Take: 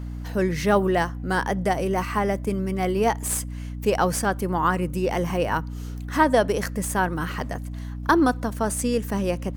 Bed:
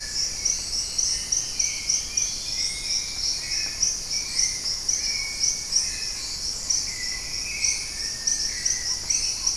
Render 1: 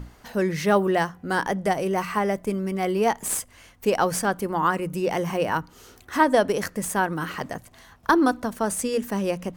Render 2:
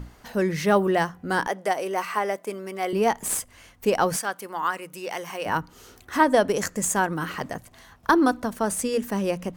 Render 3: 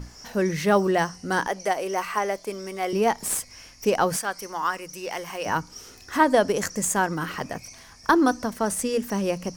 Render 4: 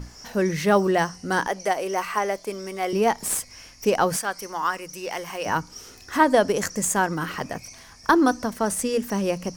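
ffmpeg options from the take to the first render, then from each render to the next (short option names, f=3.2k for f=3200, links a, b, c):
-af "bandreject=f=60:t=h:w=6,bandreject=f=120:t=h:w=6,bandreject=f=180:t=h:w=6,bandreject=f=240:t=h:w=6,bandreject=f=300:t=h:w=6"
-filter_complex "[0:a]asettb=1/sr,asplit=3[a][b][c];[a]atrim=end=1.484[d];[b]atrim=start=1.48:end=2.93,asetpts=PTS-STARTPTS,afade=t=in:d=0.004:c=qsin,afade=t=out:st=1.446:d=0.004:c=qsin,highpass=410[e];[c]atrim=start=2.926[f];[d][e]acrossfade=d=0.004:c1=hsin:c2=qsin[g];[g][f]acrossfade=d=0.004:c1=qsin:c2=hsin,asettb=1/sr,asplit=3[h][i][j];[h]atrim=end=4.164[k];[i]atrim=start=4.16:end=5.46,asetpts=PTS-STARTPTS,afade=t=in:d=0.004:c=qsin,afade=t=out:st=1.296:d=0.004:c=qsin,highpass=f=1.2k:p=1[l];[j]atrim=start=5.456[m];[k][l]acrossfade=d=0.004:c1=hsin:c2=qsin[n];[n][m]acrossfade=d=0.004:c1=qsin:c2=hsin,asettb=1/sr,asplit=3[o][p][q];[o]atrim=end=6.564[r];[p]atrim=start=6.56:end=7.07,asetpts=PTS-STARTPTS,afade=t=in:d=0.004:c=qsin,afade=t=out:st=0.506:d=0.004:c=qsin,equalizer=f=7.1k:t=o:w=0.37:g=12.5[s];[q]atrim=start=7.066[t];[r][s]acrossfade=d=0.004:c1=hsin:c2=qsin[u];[u][t]acrossfade=d=0.004:c1=qsin:c2=hsin"
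-filter_complex "[1:a]volume=-21dB[a];[0:a][a]amix=inputs=2:normalize=0"
-af "volume=1dB"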